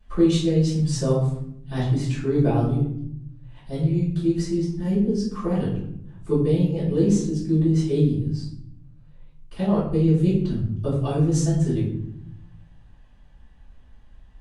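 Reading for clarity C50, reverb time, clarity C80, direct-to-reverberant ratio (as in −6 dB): 3.5 dB, 0.70 s, 7.0 dB, −15.5 dB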